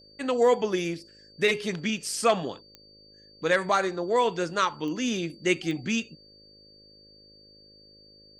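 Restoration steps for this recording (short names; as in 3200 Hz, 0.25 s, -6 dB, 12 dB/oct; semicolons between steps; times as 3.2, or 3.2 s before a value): de-click; de-hum 52.2 Hz, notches 11; notch 4600 Hz, Q 30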